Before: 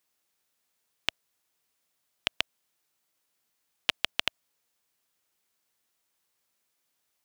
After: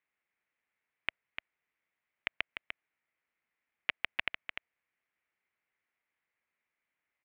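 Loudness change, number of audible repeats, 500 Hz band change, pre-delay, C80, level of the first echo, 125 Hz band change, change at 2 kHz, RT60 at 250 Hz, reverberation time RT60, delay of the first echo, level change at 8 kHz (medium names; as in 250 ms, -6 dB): -7.0 dB, 1, -7.0 dB, no reverb, no reverb, -7.5 dB, -7.0 dB, -1.0 dB, no reverb, no reverb, 298 ms, under -30 dB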